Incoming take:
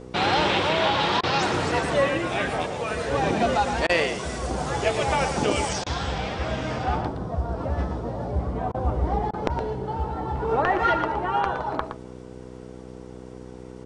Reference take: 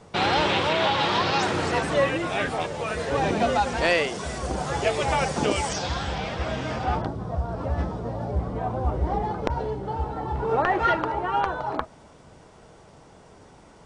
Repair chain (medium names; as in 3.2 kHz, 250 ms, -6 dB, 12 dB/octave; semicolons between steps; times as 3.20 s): de-hum 62.7 Hz, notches 8; interpolate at 1.21/3.87/5.84/8.72/9.31 s, 22 ms; inverse comb 117 ms -9 dB